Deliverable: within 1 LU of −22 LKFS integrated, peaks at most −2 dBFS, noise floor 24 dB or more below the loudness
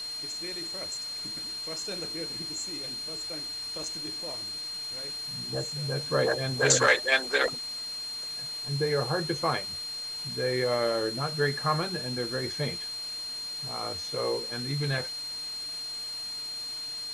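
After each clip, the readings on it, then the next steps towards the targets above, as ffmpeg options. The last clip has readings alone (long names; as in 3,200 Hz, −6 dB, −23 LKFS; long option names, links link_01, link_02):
interfering tone 4,200 Hz; level of the tone −34 dBFS; background noise floor −37 dBFS; target noise floor −54 dBFS; integrated loudness −29.5 LKFS; sample peak −8.0 dBFS; target loudness −22.0 LKFS
→ -af "bandreject=frequency=4200:width=30"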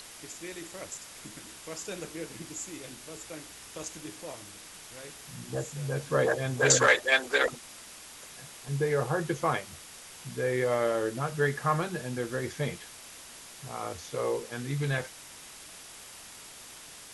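interfering tone none found; background noise floor −48 dBFS; target noise floor −54 dBFS
→ -af "afftdn=noise_reduction=6:noise_floor=-48"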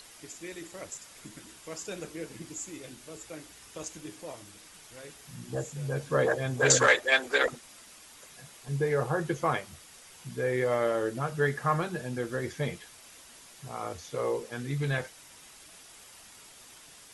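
background noise floor −53 dBFS; target noise floor −54 dBFS
→ -af "afftdn=noise_reduction=6:noise_floor=-53"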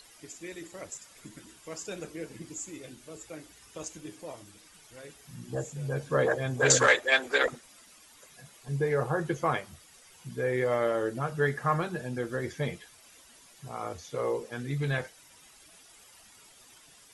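background noise floor −56 dBFS; integrated loudness −29.5 LKFS; sample peak −8.5 dBFS; target loudness −22.0 LKFS
→ -af "volume=7.5dB,alimiter=limit=-2dB:level=0:latency=1"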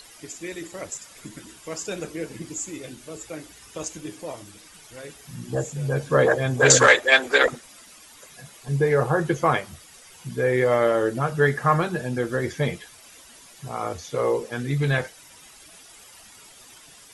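integrated loudness −22.0 LKFS; sample peak −2.0 dBFS; background noise floor −49 dBFS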